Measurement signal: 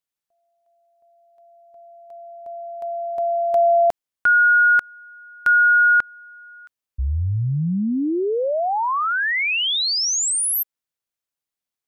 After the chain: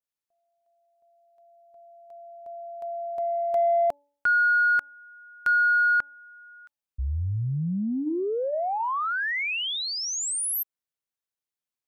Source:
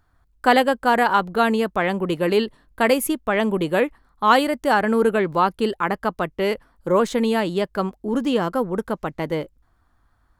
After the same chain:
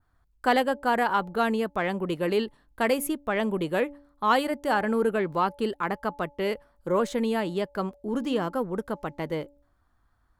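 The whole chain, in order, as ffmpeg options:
ffmpeg -i in.wav -filter_complex "[0:a]bandreject=frequency=286.5:width_type=h:width=4,bandreject=frequency=573:width_type=h:width=4,bandreject=frequency=859.5:width_type=h:width=4,adynamicequalizer=threshold=0.0158:dfrequency=4700:dqfactor=0.82:tfrequency=4700:tqfactor=0.82:attack=5:release=100:ratio=0.375:range=2:mode=cutabove:tftype=bell,asplit=2[link_01][link_02];[link_02]asoftclip=type=tanh:threshold=-14dB,volume=-10dB[link_03];[link_01][link_03]amix=inputs=2:normalize=0,volume=-8dB" out.wav

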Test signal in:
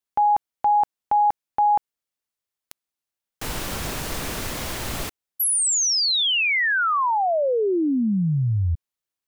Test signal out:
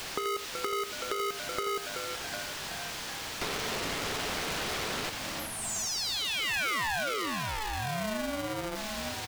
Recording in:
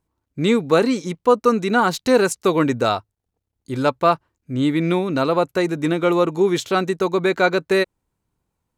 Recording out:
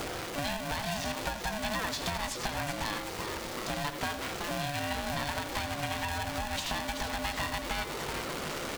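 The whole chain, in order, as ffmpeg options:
ffmpeg -i in.wav -filter_complex "[0:a]aeval=exprs='val(0)+0.5*0.0596*sgn(val(0))':channel_layout=same,acompressor=threshold=-22dB:ratio=6:attack=43:release=250:detection=peak,asplit=2[link_01][link_02];[link_02]asplit=6[link_03][link_04][link_05][link_06][link_07][link_08];[link_03]adelay=376,afreqshift=100,volume=-12.5dB[link_09];[link_04]adelay=752,afreqshift=200,volume=-17.4dB[link_10];[link_05]adelay=1128,afreqshift=300,volume=-22.3dB[link_11];[link_06]adelay=1504,afreqshift=400,volume=-27.1dB[link_12];[link_07]adelay=1880,afreqshift=500,volume=-32dB[link_13];[link_08]adelay=2256,afreqshift=600,volume=-36.9dB[link_14];[link_09][link_10][link_11][link_12][link_13][link_14]amix=inputs=6:normalize=0[link_15];[link_01][link_15]amix=inputs=2:normalize=0,acrossover=split=170|1500|6000[link_16][link_17][link_18][link_19];[link_16]acompressor=threshold=-41dB:ratio=4[link_20];[link_17]acompressor=threshold=-36dB:ratio=4[link_21];[link_18]acompressor=threshold=-33dB:ratio=4[link_22];[link_19]acompressor=threshold=-52dB:ratio=4[link_23];[link_20][link_21][link_22][link_23]amix=inputs=4:normalize=0,asplit=2[link_24][link_25];[link_25]aecho=0:1:83:0.299[link_26];[link_24][link_26]amix=inputs=2:normalize=0,aeval=exprs='val(0)*sgn(sin(2*PI*430*n/s))':channel_layout=same,volume=-1.5dB" out.wav

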